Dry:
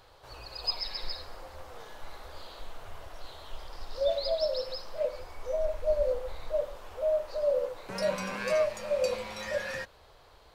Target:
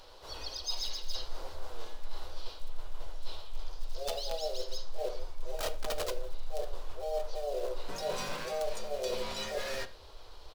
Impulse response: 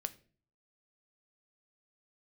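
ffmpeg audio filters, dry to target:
-filter_complex "[0:a]asplit=2[a][b];[b]aeval=exprs='(mod(37.6*val(0)+1,2)-1)/37.6':c=same,volume=-11dB[c];[a][c]amix=inputs=2:normalize=0,asubboost=boost=2.5:cutoff=93,aeval=exprs='(mod(7.5*val(0)+1,2)-1)/7.5':c=same,equalizer=f=125:t=o:w=1:g=-10,equalizer=f=250:t=o:w=1:g=3,equalizer=f=2k:t=o:w=1:g=-6,equalizer=f=4k:t=o:w=1:g=6,asplit=3[d][e][f];[e]asetrate=33038,aresample=44100,atempo=1.33484,volume=-7dB[g];[f]asetrate=55563,aresample=44100,atempo=0.793701,volume=-7dB[h];[d][g][h]amix=inputs=3:normalize=0,areverse,acompressor=threshold=-31dB:ratio=6,areverse[i];[1:a]atrim=start_sample=2205,asetrate=43659,aresample=44100[j];[i][j]afir=irnorm=-1:irlink=0"

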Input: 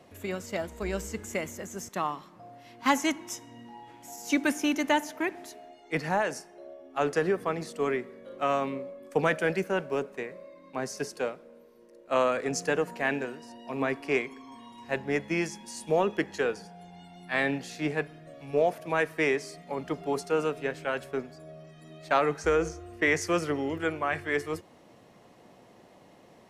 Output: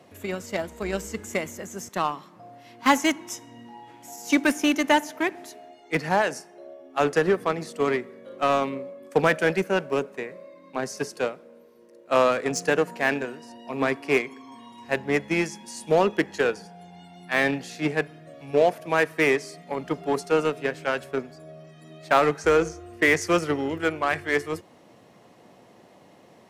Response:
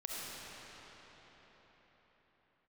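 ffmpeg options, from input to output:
-filter_complex "[0:a]highpass=80,asplit=2[a][b];[b]acrusher=bits=3:mix=0:aa=0.5,volume=-9dB[c];[a][c]amix=inputs=2:normalize=0,volume=2.5dB"

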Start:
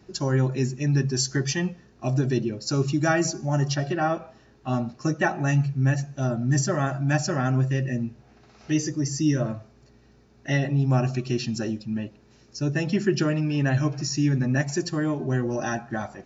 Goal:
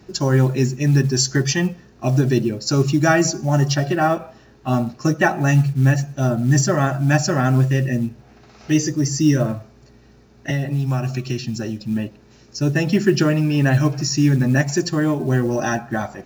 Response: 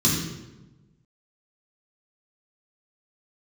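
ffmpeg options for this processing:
-filter_complex "[0:a]asettb=1/sr,asplit=3[a][b][c];[a]atrim=end=10.504[d];[b]atrim=start=10.5:end=11.81,asetpts=PTS-STARTPTS,afade=t=in:d=0.004:c=qsin,afade=t=out:st=1.306:d=0.004:c=qsin,acrossover=split=130|1000[e][f][g];[e]acompressor=threshold=-29dB:ratio=4[h];[f]acompressor=threshold=-32dB:ratio=4[i];[g]acompressor=threshold=-39dB:ratio=4[j];[h][i][j]amix=inputs=3:normalize=0[k];[c]atrim=start=11.806[l];[d][k]acrossfade=d=0.004:c1=hsin:c2=qsin[m];[m][l]acrossfade=d=0.004:c1=qsin:c2=hsin,acrusher=bits=8:mode=log:mix=0:aa=0.000001,volume=6.5dB"

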